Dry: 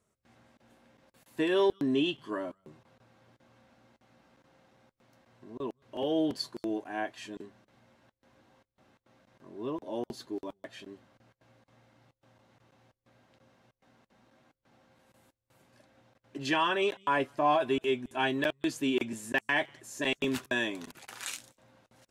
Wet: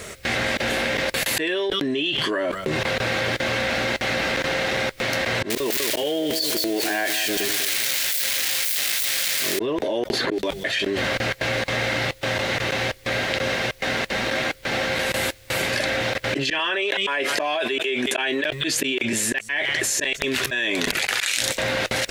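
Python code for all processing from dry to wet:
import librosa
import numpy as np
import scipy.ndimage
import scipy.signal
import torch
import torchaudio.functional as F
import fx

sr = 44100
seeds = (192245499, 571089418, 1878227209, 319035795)

y = fx.chain(x, sr, fx.crossing_spikes(level_db=-33.0),
    fx.echo_feedback(ms=197, feedback_pct=40, wet_db=-13.0), at=(5.5, 9.59))
y = fx.chain(y, sr, fx.hum_notches(base_hz=50, count=4),
    fx.band_squash(depth_pct=100), at=(10.13, 10.79))
y = fx.chain(y, sr, fx.highpass(hz=250.0, slope=12),
    fx.band_squash(depth_pct=70), at=(16.59, 18.44))
y = fx.auto_swell(y, sr, attack_ms=358.0)
y = fx.graphic_eq_10(y, sr, hz=(125, 250, 500, 1000, 2000, 4000), db=(-5, -6, 4, -7, 9, 5))
y = fx.env_flatten(y, sr, amount_pct=100)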